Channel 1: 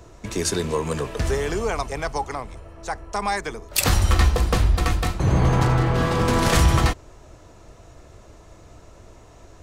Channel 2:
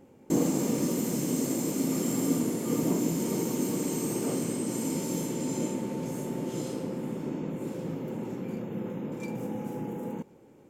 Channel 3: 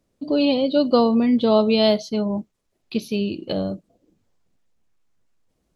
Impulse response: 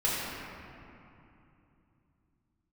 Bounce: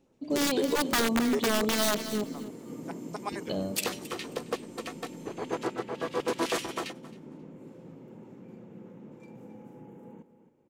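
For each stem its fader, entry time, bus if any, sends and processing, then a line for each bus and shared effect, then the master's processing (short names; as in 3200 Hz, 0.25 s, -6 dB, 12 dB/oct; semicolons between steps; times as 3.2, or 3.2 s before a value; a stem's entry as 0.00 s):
-1.5 dB, 0.00 s, no send, echo send -21.5 dB, LFO high-pass square 7.9 Hz 370–2700 Hz; upward expander 2.5:1, over -32 dBFS
-13.0 dB, 0.00 s, no send, echo send -12.5 dB, high shelf 4700 Hz -10 dB
-8.0 dB, 0.00 s, muted 2.24–3.32, no send, echo send -12 dB, wrapped overs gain 11.5 dB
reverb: off
echo: feedback echo 0.268 s, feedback 18%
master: limiter -18.5 dBFS, peak gain reduction 10.5 dB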